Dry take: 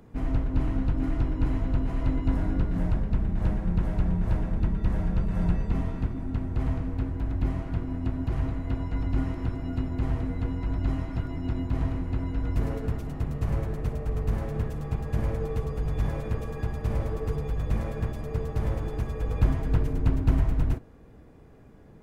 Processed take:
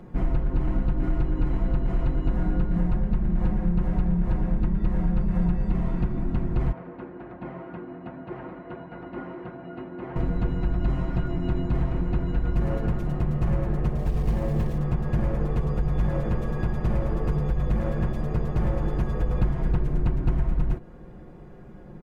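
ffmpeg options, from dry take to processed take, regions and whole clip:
-filter_complex "[0:a]asettb=1/sr,asplit=3[a][b][c];[a]atrim=end=6.724[d];[b]atrim=start=6.72:end=10.16,asetpts=PTS-STARTPTS,afade=t=in:d=0.004:c=qsin,afade=t=out:st=3.436:d=0.004:c=qsin,highpass=290,lowpass=2.3k,flanger=delay=1.2:depth=2.5:regen=-65:speed=1.4:shape=sinusoidal[e];[c]atrim=start=10.156[f];[d][e]acrossfade=d=0.004:c1=hsin:c2=qsin[g];[g][f]acrossfade=d=0.004:c1=qsin:c2=hsin,asettb=1/sr,asplit=3[h][i][j];[h]atrim=end=13.984[k];[i]atrim=start=13.98:end=14.78,asetpts=PTS-STARTPTS,afade=t=in:d=0.004:c=qsin,afade=t=out:st=0.796:d=0.004:c=qsin,equalizer=f=1.4k:t=o:w=0.22:g=-10,acrusher=bits=6:mode=log:mix=0:aa=0.000001[l];[j]atrim=start=14.776[m];[k][l]acrossfade=d=0.004:c1=hsin:c2=qsin[n];[n][m]acrossfade=d=0.004:c1=qsin:c2=hsin,highshelf=f=3.3k:g=-12,aecho=1:1:5.6:0.65,acompressor=threshold=-26dB:ratio=4,volume=6.5dB"

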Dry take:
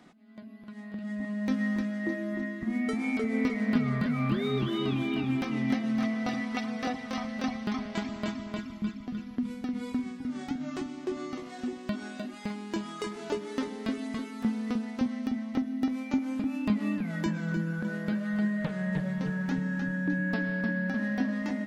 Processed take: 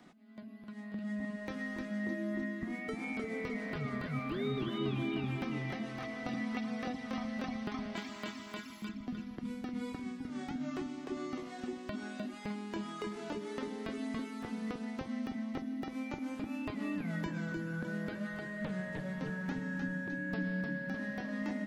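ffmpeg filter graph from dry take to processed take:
-filter_complex "[0:a]asettb=1/sr,asplit=3[a][b][c];[a]atrim=end=7.964[d];[b]atrim=start=7.96:end=8.89,asetpts=PTS-STARTPTS,afade=t=in:d=0.004:c=qsin,afade=t=out:st=0.926:d=0.004:c=qsin,aemphasis=mode=production:type=riaa,bandreject=f=650:w=18,asplit=2[e][f];[f]adelay=26,volume=-13dB[g];[e][g]amix=inputs=2:normalize=0,atrim=end_sample=41013[h];[c]atrim=start=8.886[i];[d][h]acrossfade=d=0.004:c1=hsin:c2=qsin[j];[j][i]acrossfade=d=0.004:c1=qsin:c2=hsin,acrossover=split=3200[k][l];[l]acompressor=threshold=-52dB:ratio=4:attack=1:release=60[m];[k][m]amix=inputs=2:normalize=0,afftfilt=real='re*lt(hypot(re,im),0.316)':imag='im*lt(hypot(re,im),0.316)':win_size=1024:overlap=0.75,acrossover=split=420|3000[n][o][p];[o]acompressor=threshold=-39dB:ratio=6[q];[n][q][p]amix=inputs=3:normalize=0,volume=-2.5dB"

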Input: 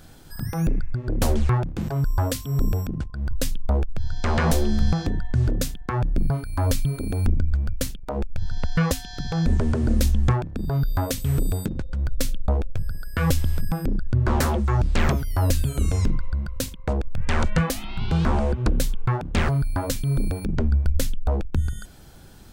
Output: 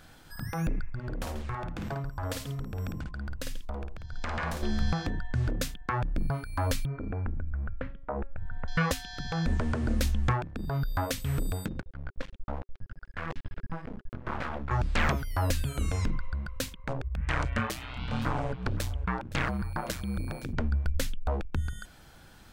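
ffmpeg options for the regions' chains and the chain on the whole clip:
-filter_complex "[0:a]asettb=1/sr,asplit=3[a][b][c];[a]atrim=end=0.894[d];[b]atrim=start=0.89:end=4.63,asetpts=PTS-STARTPTS,afade=t=in:d=0.004:c=qsin,afade=t=out:st=3.736:d=0.004:c=qsin,acompressor=threshold=-24dB:ratio=12:attack=3.2:release=140:knee=1:detection=peak,aecho=1:1:53|139:0.596|0.178,atrim=end_sample=164934[e];[c]atrim=start=4.626[f];[d][e]acrossfade=d=0.004:c1=hsin:c2=qsin[g];[g][f]acrossfade=d=0.004:c1=qsin:c2=hsin,asettb=1/sr,asplit=3[h][i][j];[h]atrim=end=6.854[k];[i]atrim=start=6.85:end=8.68,asetpts=PTS-STARTPTS,afade=t=in:d=0.004:c=qsin,afade=t=out:st=1.826:d=0.004:c=qsin,lowpass=f=1.9k:w=0.5412,lowpass=f=1.9k:w=1.3066,bandreject=f=275:t=h:w=4,bandreject=f=550:t=h:w=4,bandreject=f=825:t=h:w=4,bandreject=f=1.1k:t=h:w=4,bandreject=f=1.375k:t=h:w=4,bandreject=f=1.65k:t=h:w=4,bandreject=f=1.925k:t=h:w=4,bandreject=f=2.2k:t=h:w=4,bandreject=f=2.475k:t=h:w=4,bandreject=f=2.75k:t=h:w=4,bandreject=f=3.025k:t=h:w=4,bandreject=f=3.3k:t=h:w=4,bandreject=f=3.575k:t=h:w=4,bandreject=f=3.85k:t=h:w=4,bandreject=f=4.125k:t=h:w=4,bandreject=f=4.4k:t=h:w=4,bandreject=f=4.675k:t=h:w=4,bandreject=f=4.95k:t=h:w=4,bandreject=f=5.225k:t=h:w=4,bandreject=f=5.5k:t=h:w=4,bandreject=f=5.775k:t=h:w=4,bandreject=f=6.05k:t=h:w=4,bandreject=f=6.325k:t=h:w=4,bandreject=f=6.6k:t=h:w=4,bandreject=f=6.875k:t=h:w=4,bandreject=f=7.15k:t=h:w=4,bandreject=f=7.425k:t=h:w=4,bandreject=f=7.7k:t=h:w=4,bandreject=f=7.975k:t=h:w=4,bandreject=f=8.25k:t=h:w=4,bandreject=f=8.525k:t=h:w=4,bandreject=f=8.8k:t=h:w=4,bandreject=f=9.075k:t=h:w=4,bandreject=f=9.35k:t=h:w=4,bandreject=f=9.625k:t=h:w=4,bandreject=f=9.9k:t=h:w=4,bandreject=f=10.175k:t=h:w=4,bandreject=f=10.45k:t=h:w=4,acompressor=threshold=-21dB:ratio=2.5:attack=3.2:release=140:knee=1:detection=peak[l];[j]atrim=start=8.676[m];[k][l]acrossfade=d=0.004:c1=hsin:c2=qsin[n];[n][m]acrossfade=d=0.004:c1=qsin:c2=hsin,asettb=1/sr,asplit=3[o][p][q];[o]atrim=end=11.804[r];[p]atrim=start=11.8:end=14.71,asetpts=PTS-STARTPTS,afade=t=in:d=0.004:c=qsin,afade=t=out:st=2.906:d=0.004:c=qsin,lowpass=2.4k,flanger=delay=17.5:depth=3.5:speed=1.1,aeval=exprs='max(val(0),0)':c=same[s];[q]atrim=start=14.706[t];[r][s]acrossfade=d=0.004:c1=hsin:c2=qsin[u];[u][t]acrossfade=d=0.004:c1=qsin:c2=hsin,asettb=1/sr,asplit=3[v][w][x];[v]atrim=end=16.844[y];[w]atrim=start=16.84:end=20.53,asetpts=PTS-STARTPTS,afade=t=in:d=0.004:c=qsin,afade=t=out:st=3.686:d=0.004:c=qsin,acompressor=mode=upward:threshold=-29dB:ratio=2.5:attack=3.2:release=140:knee=2.83:detection=peak,aeval=exprs='val(0)*sin(2*PI*62*n/s)':c=same,aecho=1:1:517:0.133,atrim=end_sample=162729[z];[x]atrim=start=20.526[aa];[y][z]acrossfade=d=0.004:c1=hsin:c2=qsin[ab];[ab][aa]acrossfade=d=0.004:c1=qsin:c2=hsin,equalizer=f=1.7k:t=o:w=2.7:g=8.5,bandreject=f=390:w=12,volume=-8dB"

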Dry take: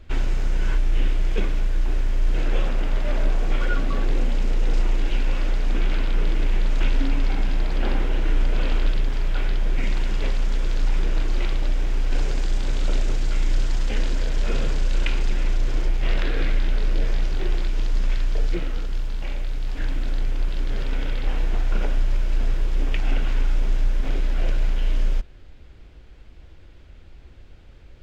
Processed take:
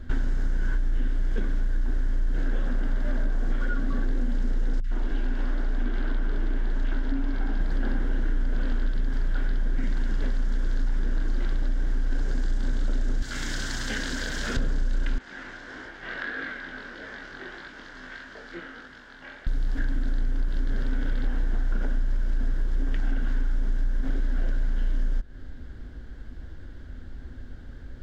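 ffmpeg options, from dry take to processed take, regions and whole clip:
-filter_complex "[0:a]asettb=1/sr,asplit=3[a][b][c];[a]atrim=end=4.804[d];[b]atrim=start=4.8:end=7.61,asetpts=PTS-STARTPTS,afade=t=in:d=0.004:c=qsin,afade=t=out:st=2.806:d=0.004:c=qsin,bass=f=250:g=-5,treble=f=4k:g=-8,bandreject=f=510:w=10,acrossover=split=170|1800[e][f][g];[g]adelay=40[h];[f]adelay=110[i];[e][i][h]amix=inputs=3:normalize=0,atrim=end_sample=123921[j];[c]atrim=start=7.606[k];[d][j]acrossfade=d=0.004:c1=hsin:c2=qsin[l];[l][k]acrossfade=d=0.004:c1=qsin:c2=hsin,asettb=1/sr,asplit=3[m][n][o];[m]atrim=end=13.224[p];[n]atrim=start=13.22:end=14.57,asetpts=PTS-STARTPTS,afade=t=in:d=0.004:c=qsin,afade=t=out:st=1.346:d=0.004:c=qsin,highpass=52,tiltshelf=f=1.1k:g=-7.5[q];[o]atrim=start=14.566[r];[p][q]acrossfade=d=0.004:c1=hsin:c2=qsin[s];[s][r]acrossfade=d=0.004:c1=qsin:c2=hsin,asettb=1/sr,asplit=3[t][u][v];[t]atrim=end=15.184[w];[u]atrim=start=15.18:end=19.47,asetpts=PTS-STARTPTS,afade=t=in:d=0.004:c=qsin,afade=t=out:st=4.286:d=0.004:c=qsin,bandpass=f=1.8k:t=q:w=0.75,flanger=delay=19:depth=4.6:speed=1.6[x];[v]atrim=start=19.466[y];[w][x]acrossfade=d=0.004:c1=hsin:c2=qsin[z];[z][y]acrossfade=d=0.004:c1=qsin:c2=hsin,equalizer=f=250:t=o:w=0.33:g=11,equalizer=f=1.6k:t=o:w=0.33:g=12,equalizer=f=2.5k:t=o:w=0.33:g=-12,acompressor=threshold=-27dB:ratio=6,lowshelf=f=300:g=6"

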